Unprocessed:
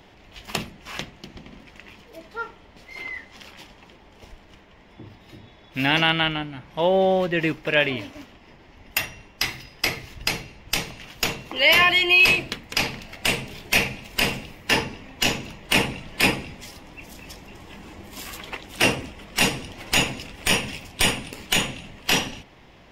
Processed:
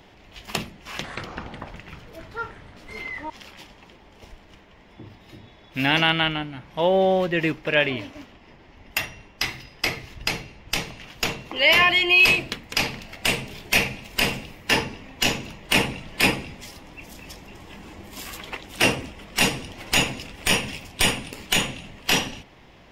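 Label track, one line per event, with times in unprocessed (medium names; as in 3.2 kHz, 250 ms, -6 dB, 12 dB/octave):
0.900000	3.300000	ever faster or slower copies 135 ms, each echo -7 st, echoes 3
7.510000	12.170000	treble shelf 7.2 kHz -6 dB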